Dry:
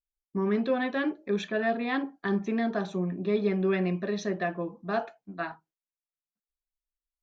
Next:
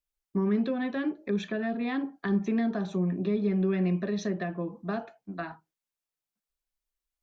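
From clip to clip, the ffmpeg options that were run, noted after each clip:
-filter_complex "[0:a]acrossover=split=280[a][b];[b]acompressor=threshold=-37dB:ratio=6[c];[a][c]amix=inputs=2:normalize=0,volume=3.5dB"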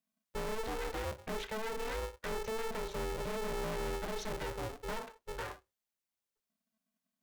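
-af "asoftclip=type=tanh:threshold=-34dB,aeval=exprs='val(0)*sgn(sin(2*PI*220*n/s))':c=same,volume=-1dB"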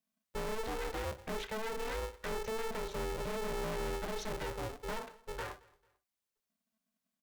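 -af "aecho=1:1:222|444:0.0631|0.0221"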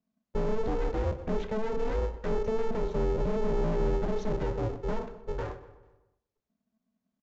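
-filter_complex "[0:a]tiltshelf=f=970:g=9.5,asplit=2[a][b];[b]adelay=126,lowpass=f=2.6k:p=1,volume=-14dB,asplit=2[c][d];[d]adelay=126,lowpass=f=2.6k:p=1,volume=0.51,asplit=2[e][f];[f]adelay=126,lowpass=f=2.6k:p=1,volume=0.51,asplit=2[g][h];[h]adelay=126,lowpass=f=2.6k:p=1,volume=0.51,asplit=2[i][j];[j]adelay=126,lowpass=f=2.6k:p=1,volume=0.51[k];[a][c][e][g][i][k]amix=inputs=6:normalize=0,aresample=16000,aresample=44100,volume=2.5dB"

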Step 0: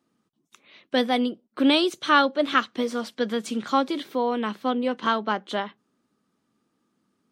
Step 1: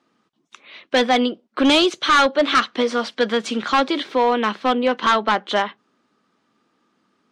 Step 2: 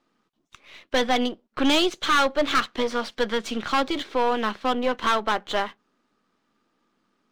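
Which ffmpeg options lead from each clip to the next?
-filter_complex "[0:a]asplit=2[a][b];[b]highpass=f=720:p=1,volume=12dB,asoftclip=type=tanh:threshold=-5.5dB[c];[a][c]amix=inputs=2:normalize=0,lowpass=f=4.1k:p=1,volume=-6dB,volume=15.5dB,asoftclip=hard,volume=-15.5dB,lowpass=6.8k,volume=4.5dB"
-af "aeval=exprs='if(lt(val(0),0),0.447*val(0),val(0))':c=same,volume=-2.5dB"

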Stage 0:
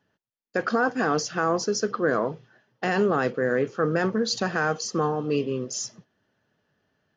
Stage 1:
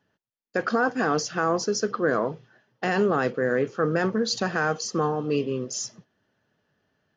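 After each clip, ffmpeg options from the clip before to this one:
-af anull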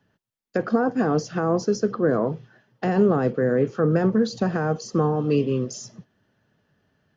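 -filter_complex "[0:a]bass=f=250:g=6,treble=f=4k:g=-1,acrossover=split=310|900[a][b][c];[c]acompressor=threshold=-38dB:ratio=6[d];[a][b][d]amix=inputs=3:normalize=0,volume=2.5dB"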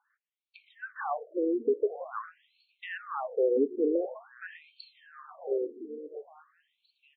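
-af "alimiter=limit=-14dB:level=0:latency=1:release=301,aecho=1:1:861|1722|2583|3444:0.188|0.081|0.0348|0.015,afftfilt=real='re*between(b*sr/1024,330*pow(3200/330,0.5+0.5*sin(2*PI*0.47*pts/sr))/1.41,330*pow(3200/330,0.5+0.5*sin(2*PI*0.47*pts/sr))*1.41)':imag='im*between(b*sr/1024,330*pow(3200/330,0.5+0.5*sin(2*PI*0.47*pts/sr))/1.41,330*pow(3200/330,0.5+0.5*sin(2*PI*0.47*pts/sr))*1.41)':win_size=1024:overlap=0.75"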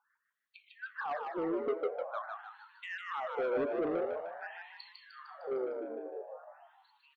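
-filter_complex "[0:a]asoftclip=type=tanh:threshold=-28dB,asplit=2[a][b];[b]asplit=6[c][d][e][f][g][h];[c]adelay=152,afreqshift=84,volume=-4.5dB[i];[d]adelay=304,afreqshift=168,volume=-10.5dB[j];[e]adelay=456,afreqshift=252,volume=-16.5dB[k];[f]adelay=608,afreqshift=336,volume=-22.6dB[l];[g]adelay=760,afreqshift=420,volume=-28.6dB[m];[h]adelay=912,afreqshift=504,volume=-34.6dB[n];[i][j][k][l][m][n]amix=inputs=6:normalize=0[o];[a][o]amix=inputs=2:normalize=0,volume=-2dB"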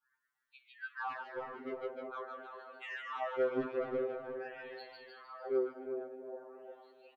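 -filter_complex "[0:a]asplit=2[a][b];[b]adelay=358,lowpass=f=1.1k:p=1,volume=-6dB,asplit=2[c][d];[d]adelay=358,lowpass=f=1.1k:p=1,volume=0.36,asplit=2[e][f];[f]adelay=358,lowpass=f=1.1k:p=1,volume=0.36,asplit=2[g][h];[h]adelay=358,lowpass=f=1.1k:p=1,volume=0.36[i];[a][c][e][g][i]amix=inputs=5:normalize=0,adynamicequalizer=threshold=0.00562:dfrequency=710:dqfactor=0.84:tfrequency=710:tqfactor=0.84:attack=5:release=100:ratio=0.375:range=3:mode=cutabove:tftype=bell,afftfilt=real='re*2.45*eq(mod(b,6),0)':imag='im*2.45*eq(mod(b,6),0)':win_size=2048:overlap=0.75,volume=1dB"

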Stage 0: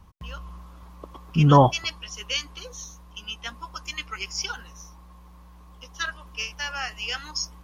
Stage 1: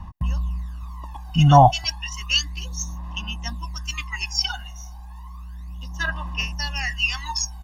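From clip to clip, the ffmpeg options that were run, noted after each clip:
-af "aphaser=in_gain=1:out_gain=1:delay=1.4:decay=0.74:speed=0.32:type=sinusoidal,aecho=1:1:1.1:0.86,volume=-1dB"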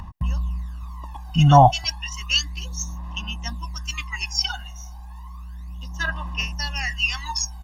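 -af "acompressor=mode=upward:threshold=-36dB:ratio=2.5"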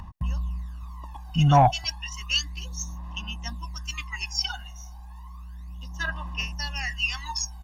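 -af "asoftclip=type=tanh:threshold=-3dB,volume=-4dB"

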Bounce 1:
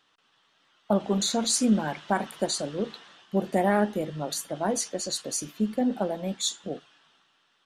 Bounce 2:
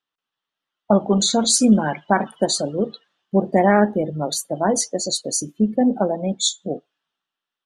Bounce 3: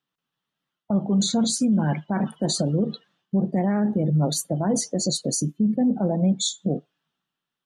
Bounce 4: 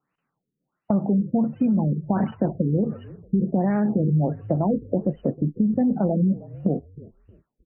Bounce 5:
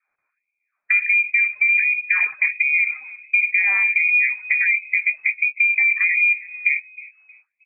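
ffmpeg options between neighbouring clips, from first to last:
-af "afftdn=nr=27:nf=-39,volume=8dB"
-af "equalizer=f=160:w=0.94:g=15,areverse,acompressor=threshold=-13dB:ratio=6,areverse,alimiter=limit=-14.5dB:level=0:latency=1:release=84"
-filter_complex "[0:a]acompressor=threshold=-26dB:ratio=5,asplit=4[a][b][c][d];[b]adelay=313,afreqshift=-49,volume=-19dB[e];[c]adelay=626,afreqshift=-98,volume=-29.5dB[f];[d]adelay=939,afreqshift=-147,volume=-39.9dB[g];[a][e][f][g]amix=inputs=4:normalize=0,afftfilt=real='re*lt(b*sr/1024,500*pow(3100/500,0.5+0.5*sin(2*PI*1.4*pts/sr)))':imag='im*lt(b*sr/1024,500*pow(3100/500,0.5+0.5*sin(2*PI*1.4*pts/sr)))':win_size=1024:overlap=0.75,volume=7.5dB"
-af "lowpass=f=2.2k:t=q:w=0.5098,lowpass=f=2.2k:t=q:w=0.6013,lowpass=f=2.2k:t=q:w=0.9,lowpass=f=2.2k:t=q:w=2.563,afreqshift=-2600,volume=3dB"

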